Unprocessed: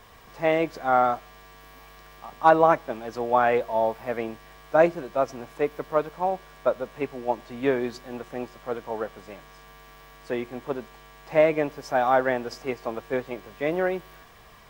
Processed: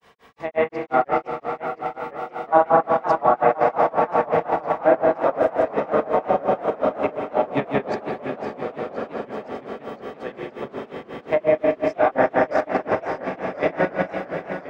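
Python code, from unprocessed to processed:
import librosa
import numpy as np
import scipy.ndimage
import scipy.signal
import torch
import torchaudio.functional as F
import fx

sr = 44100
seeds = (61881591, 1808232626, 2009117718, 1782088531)

p1 = fx.octave_divider(x, sr, octaves=1, level_db=-1.0)
p2 = scipy.signal.sosfilt(scipy.signal.butter(2, 65.0, 'highpass', fs=sr, output='sos'), p1)
p3 = fx.low_shelf(p2, sr, hz=130.0, db=-11.5)
p4 = fx.env_lowpass_down(p3, sr, base_hz=1400.0, full_db=-16.0)
p5 = fx.high_shelf(p4, sr, hz=8400.0, db=-6.0)
p6 = fx.hum_notches(p5, sr, base_hz=60, count=7)
p7 = fx.echo_diffused(p6, sr, ms=597, feedback_pct=68, wet_db=-5.5)
p8 = fx.rev_spring(p7, sr, rt60_s=2.1, pass_ms=(42,), chirp_ms=35, drr_db=-4.0)
p9 = fx.granulator(p8, sr, seeds[0], grain_ms=158.0, per_s=5.6, spray_ms=100.0, spread_st=0)
p10 = fx.level_steps(p9, sr, step_db=23)
p11 = p9 + (p10 * librosa.db_to_amplitude(1.0))
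p12 = fx.echo_warbled(p11, sr, ms=514, feedback_pct=59, rate_hz=2.8, cents=211, wet_db=-13)
y = p12 * librosa.db_to_amplitude(-2.0)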